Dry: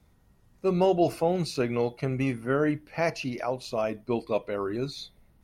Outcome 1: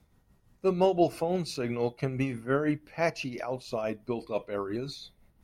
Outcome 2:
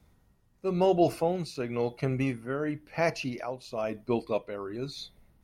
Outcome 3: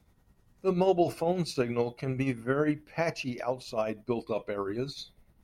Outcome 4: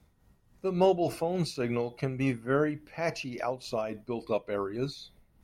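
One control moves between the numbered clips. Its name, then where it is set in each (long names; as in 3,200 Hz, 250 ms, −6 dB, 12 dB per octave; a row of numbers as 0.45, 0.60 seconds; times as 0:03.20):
amplitude tremolo, speed: 5.9, 0.97, 10, 3.5 Hertz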